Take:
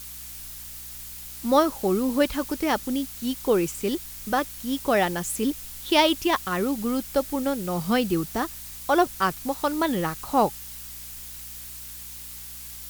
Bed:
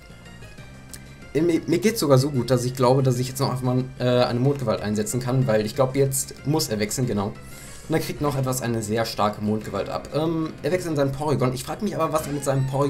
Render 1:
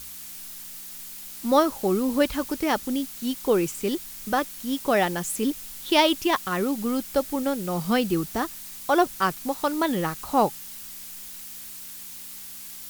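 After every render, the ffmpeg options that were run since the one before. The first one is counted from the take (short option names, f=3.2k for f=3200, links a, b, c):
-af "bandreject=f=60:t=h:w=4,bandreject=f=120:t=h:w=4"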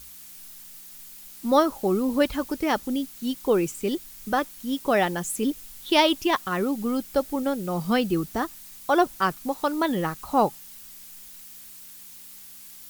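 -af "afftdn=nr=6:nf=-40"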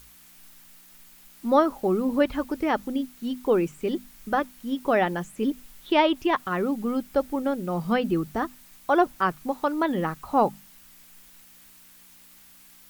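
-filter_complex "[0:a]bandreject=f=50:t=h:w=6,bandreject=f=100:t=h:w=6,bandreject=f=150:t=h:w=6,bandreject=f=200:t=h:w=6,bandreject=f=250:t=h:w=6,acrossover=split=2900[a][b];[b]acompressor=threshold=-49dB:ratio=4:attack=1:release=60[c];[a][c]amix=inputs=2:normalize=0"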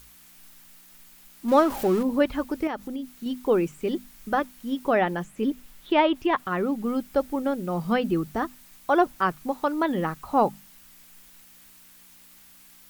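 -filter_complex "[0:a]asettb=1/sr,asplit=3[a][b][c];[a]atrim=end=1.484[d];[b]atrim=start=1.48:end=2.03,asetpts=PTS-STARTPTS,afade=t=in:d=0.004:c=qsin,afade=t=out:st=0.546:d=0.004:c=qsin,aeval=exprs='val(0)+0.5*0.0299*sgn(val(0))':c=same[e];[c]atrim=start=2.026[f];[d][e]acrossfade=d=0.004:c1=hsin:c2=qsin[g];[g][f]acrossfade=d=0.004:c1=qsin:c2=hsin,asettb=1/sr,asplit=3[h][i][j];[h]atrim=end=2.674[k];[i]atrim=start=2.67:end=3.26,asetpts=PTS-STARTPTS,afade=t=in:d=0.004:c=qsin,afade=t=out:st=0.586:d=0.004:c=qsin,acompressor=threshold=-31dB:ratio=2.5:attack=3.2:release=140:knee=1:detection=peak[l];[j]atrim=start=3.256[m];[k][l]acrossfade=d=0.004:c1=hsin:c2=qsin[n];[n][m]acrossfade=d=0.004:c1=qsin:c2=hsin,asettb=1/sr,asplit=3[o][p][q];[o]atrim=end=4.884[r];[p]atrim=start=4.88:end=6.84,asetpts=PTS-STARTPTS,afade=t=in:d=0.004:c=qsin,afade=t=out:st=1.956:d=0.004:c=qsin,acrossover=split=3600[s][t];[t]acompressor=threshold=-50dB:ratio=4:attack=1:release=60[u];[s][u]amix=inputs=2:normalize=0[v];[q]atrim=start=6.836[w];[r][v]acrossfade=d=0.004:c1=hsin:c2=qsin[x];[x][w]acrossfade=d=0.004:c1=qsin:c2=hsin"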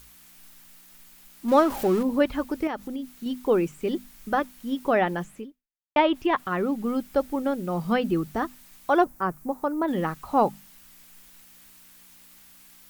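-filter_complex "[0:a]asettb=1/sr,asplit=3[a][b][c];[a]atrim=end=9.044[d];[b]atrim=start=9.04:end=9.88,asetpts=PTS-STARTPTS,afade=t=in:d=0.004:c=qsin,afade=t=out:st=0.836:d=0.004:c=qsin,equalizer=f=3.3k:t=o:w=1.7:g=-15[e];[c]atrim=start=9.876[f];[d][e]acrossfade=d=0.004:c1=hsin:c2=qsin[g];[g][f]acrossfade=d=0.004:c1=qsin:c2=hsin,asplit=2[h][i];[h]atrim=end=5.96,asetpts=PTS-STARTPTS,afade=t=out:st=5.36:d=0.6:c=exp[j];[i]atrim=start=5.96,asetpts=PTS-STARTPTS,afade=t=in:d=0.004:c=hsin[k];[j][k]concat=n=2:v=0:a=1"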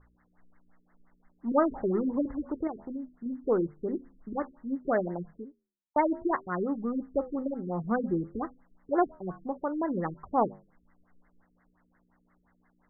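-af "flanger=delay=9:depth=4.5:regen=-83:speed=0.58:shape=sinusoidal,afftfilt=real='re*lt(b*sr/1024,440*pow(2200/440,0.5+0.5*sin(2*PI*5.7*pts/sr)))':imag='im*lt(b*sr/1024,440*pow(2200/440,0.5+0.5*sin(2*PI*5.7*pts/sr)))':win_size=1024:overlap=0.75"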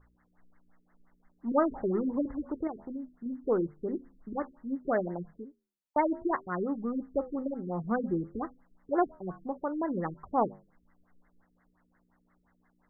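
-af "volume=-1.5dB"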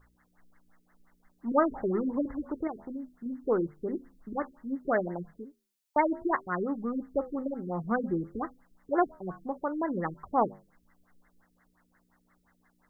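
-af "highshelf=f=2k:g=11.5"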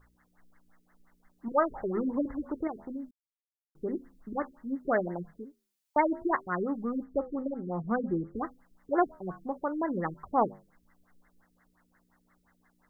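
-filter_complex "[0:a]asettb=1/sr,asplit=3[a][b][c];[a]atrim=end=1.484[d];[b]atrim=start=1.48:end=1.97,asetpts=PTS-STARTPTS,afade=t=in:d=0.004:c=qsin,afade=t=out:st=0.486:d=0.004:c=qsin,equalizer=f=260:w=2.3:g=-12[e];[c]atrim=start=1.966[f];[d][e]acrossfade=d=0.004:c1=hsin:c2=qsin[g];[g][f]acrossfade=d=0.004:c1=qsin:c2=hsin,asettb=1/sr,asplit=3[h][i][j];[h]atrim=end=7.044[k];[i]atrim=start=7.04:end=8.36,asetpts=PTS-STARTPTS,afade=t=in:d=0.004:c=qsin,afade=t=out:st=1.316:d=0.004:c=qsin,highshelf=f=2k:g=-8[l];[j]atrim=start=8.356[m];[k][l]acrossfade=d=0.004:c1=hsin:c2=qsin[n];[n][m]acrossfade=d=0.004:c1=qsin:c2=hsin,asplit=3[o][p][q];[o]atrim=end=3.11,asetpts=PTS-STARTPTS,afade=t=out:st=3.106:d=0.004:c=hsin[r];[p]atrim=start=3.11:end=3.75,asetpts=PTS-STARTPTS,volume=0[s];[q]atrim=start=3.75,asetpts=PTS-STARTPTS,afade=t=in:d=0.004:c=hsin[t];[r][s][t]concat=n=3:v=0:a=1"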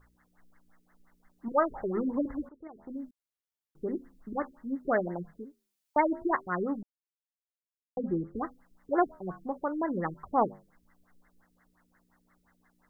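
-filter_complex "[0:a]asplit=4[a][b][c][d];[a]atrim=end=2.49,asetpts=PTS-STARTPTS,afade=t=out:st=2.486:d=0.004:c=hsin:silence=0.1[e];[b]atrim=start=2.49:end=6.83,asetpts=PTS-STARTPTS,afade=t=in:d=0.49:c=qua:silence=0.1,afade=t=out:st=4.336:d=0.004:c=hsin[f];[c]atrim=start=6.83:end=7.97,asetpts=PTS-STARTPTS,volume=0[g];[d]atrim=start=7.97,asetpts=PTS-STARTPTS,afade=t=in:d=0.004:c=hsin[h];[e][f][g][h]concat=n=4:v=0:a=1"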